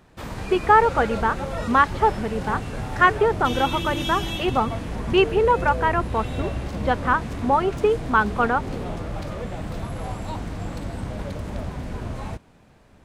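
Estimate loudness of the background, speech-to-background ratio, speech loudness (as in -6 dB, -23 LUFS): -30.5 LUFS, 8.5 dB, -22.0 LUFS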